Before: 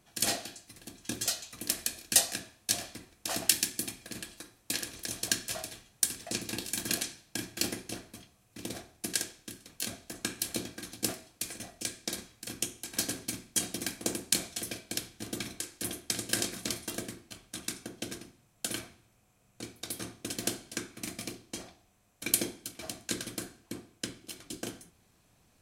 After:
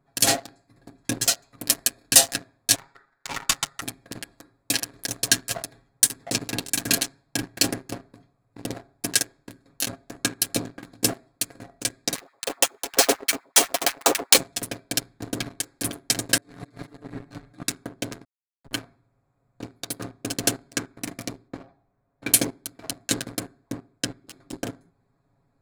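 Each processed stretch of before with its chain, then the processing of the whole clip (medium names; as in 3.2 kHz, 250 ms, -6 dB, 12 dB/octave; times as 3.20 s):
2.75–3.82 s: low-pass 6.5 kHz + ring modulator 1.6 kHz
12.15–14.37 s: square wave that keeps the level + band-stop 1.6 kHz, Q 13 + LFO high-pass sine 8.1 Hz 420–1900 Hz
16.37–17.63 s: treble shelf 4.9 kHz -5 dB + comb 6.8 ms, depth 89% + compressor with a negative ratio -47 dBFS
18.24–18.73 s: Schmitt trigger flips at -29 dBFS + compression 2:1, threshold -51 dBFS
21.48–22.29 s: low-pass 2.2 kHz 6 dB/octave + doubling 15 ms -11.5 dB
whole clip: local Wiener filter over 15 samples; comb 7.3 ms, depth 68%; waveshaping leveller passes 2; trim +2 dB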